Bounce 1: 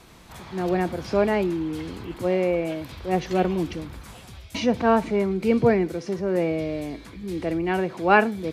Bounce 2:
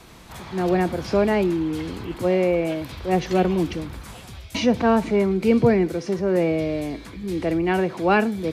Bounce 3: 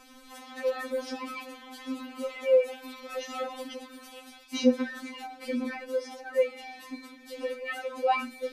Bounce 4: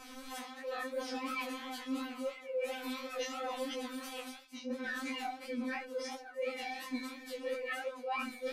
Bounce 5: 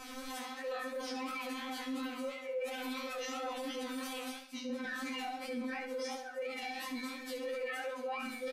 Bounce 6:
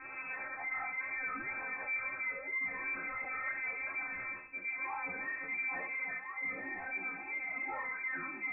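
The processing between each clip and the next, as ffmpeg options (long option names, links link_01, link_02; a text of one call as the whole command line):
ffmpeg -i in.wav -filter_complex "[0:a]acrossover=split=370|3000[link_01][link_02][link_03];[link_02]acompressor=threshold=-23dB:ratio=3[link_04];[link_01][link_04][link_03]amix=inputs=3:normalize=0,volume=3.5dB" out.wav
ffmpeg -i in.wav -af "afftfilt=real='re*3.46*eq(mod(b,12),0)':imag='im*3.46*eq(mod(b,12),0)':win_size=2048:overlap=0.75,volume=-3.5dB" out.wav
ffmpeg -i in.wav -af "areverse,acompressor=threshold=-38dB:ratio=16,areverse,flanger=delay=18:depth=5.1:speed=2.9,volume=6.5dB" out.wav
ffmpeg -i in.wav -af "alimiter=level_in=12dB:limit=-24dB:level=0:latency=1:release=42,volume=-12dB,aecho=1:1:69|138|207|276:0.335|0.137|0.0563|0.0231,volume=3.5dB" out.wav
ffmpeg -i in.wav -af "flanger=delay=18.5:depth=5.7:speed=2.1,asoftclip=type=tanh:threshold=-36dB,lowpass=frequency=2200:width_type=q:width=0.5098,lowpass=frequency=2200:width_type=q:width=0.6013,lowpass=frequency=2200:width_type=q:width=0.9,lowpass=frequency=2200:width_type=q:width=2.563,afreqshift=-2600,volume=5.5dB" out.wav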